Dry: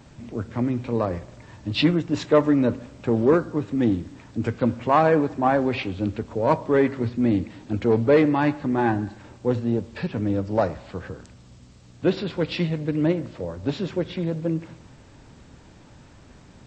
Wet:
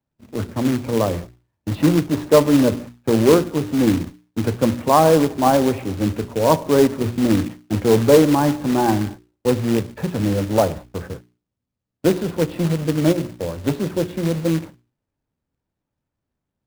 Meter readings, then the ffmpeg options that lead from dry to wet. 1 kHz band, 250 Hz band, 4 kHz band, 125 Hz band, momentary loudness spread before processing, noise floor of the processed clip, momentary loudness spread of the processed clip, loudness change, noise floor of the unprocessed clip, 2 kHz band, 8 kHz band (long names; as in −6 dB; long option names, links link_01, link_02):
+4.0 dB, +4.5 dB, +4.5 dB, +4.5 dB, 12 LU, −82 dBFS, 12 LU, +4.5 dB, −50 dBFS, +1.0 dB, can't be measured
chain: -filter_complex "[0:a]agate=range=-37dB:threshold=-36dB:ratio=16:detection=peak,highshelf=frequency=2600:gain=-10.5,bandreject=frequency=60:width_type=h:width=6,bandreject=frequency=120:width_type=h:width=6,bandreject=frequency=180:width_type=h:width=6,bandreject=frequency=240:width_type=h:width=6,bandreject=frequency=300:width_type=h:width=6,bandreject=frequency=360:width_type=h:width=6,bandreject=frequency=420:width_type=h:width=6,acrossover=split=100|1100|1300[link_01][link_02][link_03][link_04];[link_04]acompressor=threshold=-53dB:ratio=6[link_05];[link_01][link_02][link_03][link_05]amix=inputs=4:normalize=0,acrusher=bits=3:mode=log:mix=0:aa=0.000001,volume=5.5dB"